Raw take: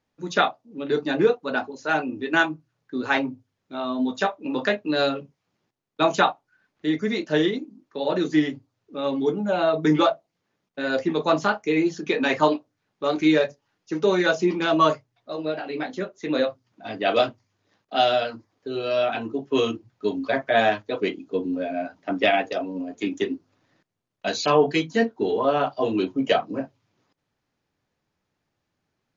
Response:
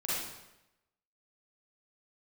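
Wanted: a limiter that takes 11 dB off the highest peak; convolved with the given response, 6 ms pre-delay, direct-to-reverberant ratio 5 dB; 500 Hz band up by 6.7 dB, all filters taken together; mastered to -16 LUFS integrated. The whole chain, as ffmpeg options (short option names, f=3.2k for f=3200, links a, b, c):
-filter_complex "[0:a]equalizer=f=500:t=o:g=8.5,alimiter=limit=-11dB:level=0:latency=1,asplit=2[a][b];[1:a]atrim=start_sample=2205,adelay=6[c];[b][c]afir=irnorm=-1:irlink=0,volume=-11dB[d];[a][d]amix=inputs=2:normalize=0,volume=5.5dB"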